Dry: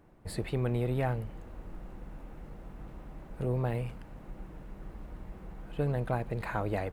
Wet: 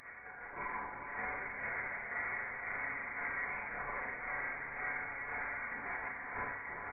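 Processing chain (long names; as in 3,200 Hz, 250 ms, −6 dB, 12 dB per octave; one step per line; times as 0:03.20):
sub-octave generator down 2 octaves, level 0 dB
Butterworth high-pass 1,200 Hz 72 dB per octave
notch filter 2,100 Hz, Q 22
comb filter 6.7 ms, depth 68%
brickwall limiter −39 dBFS, peak gain reduction 11 dB
compressor whose output falls as the input rises −59 dBFS, ratio −1
pitch-shifted copies added +4 semitones −14 dB, +7 semitones −8 dB
shaped tremolo saw down 1.9 Hz, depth 70%
on a send: feedback delay with all-pass diffusion 451 ms, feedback 43%, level −6 dB
on the sum: four-comb reverb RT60 0.68 s, combs from 26 ms, DRR −6.5 dB
voice inversion scrambler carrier 3,400 Hz
level +13 dB
Ogg Vorbis 48 kbit/s 44,100 Hz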